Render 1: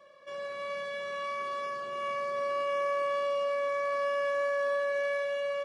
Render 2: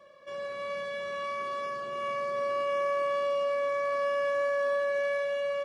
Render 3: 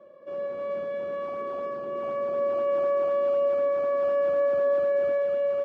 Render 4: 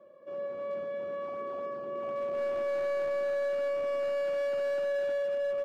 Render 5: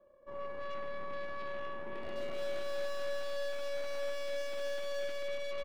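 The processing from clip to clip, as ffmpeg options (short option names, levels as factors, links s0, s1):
-af "lowshelf=f=370:g=5.5"
-filter_complex "[0:a]asplit=2[s0][s1];[s1]acrusher=samples=14:mix=1:aa=0.000001:lfo=1:lforange=22.4:lforate=4,volume=0.282[s2];[s0][s2]amix=inputs=2:normalize=0,bandpass=f=340:t=q:w=1.3:csg=0,volume=2.66"
-af "volume=15.8,asoftclip=hard,volume=0.0631,volume=0.596"
-filter_complex "[0:a]aeval=exprs='0.0398*(cos(1*acos(clip(val(0)/0.0398,-1,1)))-cos(1*PI/2))+0.0126*(cos(4*acos(clip(val(0)/0.0398,-1,1)))-cos(4*PI/2))+0.00141*(cos(7*acos(clip(val(0)/0.0398,-1,1)))-cos(7*PI/2))':c=same,asplit=2[s0][s1];[s1]adelay=133,lowpass=f=2000:p=1,volume=0.447,asplit=2[s2][s3];[s3]adelay=133,lowpass=f=2000:p=1,volume=0.52,asplit=2[s4][s5];[s5]adelay=133,lowpass=f=2000:p=1,volume=0.52,asplit=2[s6][s7];[s7]adelay=133,lowpass=f=2000:p=1,volume=0.52,asplit=2[s8][s9];[s9]adelay=133,lowpass=f=2000:p=1,volume=0.52,asplit=2[s10][s11];[s11]adelay=133,lowpass=f=2000:p=1,volume=0.52[s12];[s2][s4][s6][s8][s10][s12]amix=inputs=6:normalize=0[s13];[s0][s13]amix=inputs=2:normalize=0,volume=0.473"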